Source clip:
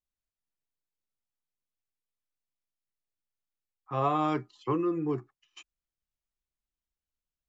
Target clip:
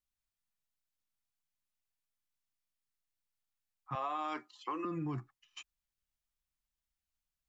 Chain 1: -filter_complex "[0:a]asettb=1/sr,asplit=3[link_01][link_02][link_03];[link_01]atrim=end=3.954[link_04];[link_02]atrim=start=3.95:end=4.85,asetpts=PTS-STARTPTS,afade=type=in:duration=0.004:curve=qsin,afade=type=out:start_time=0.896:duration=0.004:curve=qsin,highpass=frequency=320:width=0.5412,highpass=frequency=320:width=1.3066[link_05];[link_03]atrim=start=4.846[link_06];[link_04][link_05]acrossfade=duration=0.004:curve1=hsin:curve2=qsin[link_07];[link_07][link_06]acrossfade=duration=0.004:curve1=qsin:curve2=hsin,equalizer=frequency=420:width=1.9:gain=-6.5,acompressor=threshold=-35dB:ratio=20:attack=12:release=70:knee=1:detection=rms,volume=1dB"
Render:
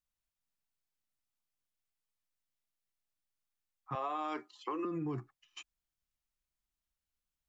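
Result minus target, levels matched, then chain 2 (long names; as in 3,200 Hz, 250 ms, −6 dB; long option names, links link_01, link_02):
500 Hz band +2.5 dB
-filter_complex "[0:a]asettb=1/sr,asplit=3[link_01][link_02][link_03];[link_01]atrim=end=3.954[link_04];[link_02]atrim=start=3.95:end=4.85,asetpts=PTS-STARTPTS,afade=type=in:duration=0.004:curve=qsin,afade=type=out:start_time=0.896:duration=0.004:curve=qsin,highpass=frequency=320:width=0.5412,highpass=frequency=320:width=1.3066[link_05];[link_03]atrim=start=4.846[link_06];[link_04][link_05]acrossfade=duration=0.004:curve1=hsin:curve2=qsin[link_07];[link_07][link_06]acrossfade=duration=0.004:curve1=qsin:curve2=hsin,equalizer=frequency=420:width=1.9:gain=-15.5,acompressor=threshold=-35dB:ratio=20:attack=12:release=70:knee=1:detection=rms,volume=1dB"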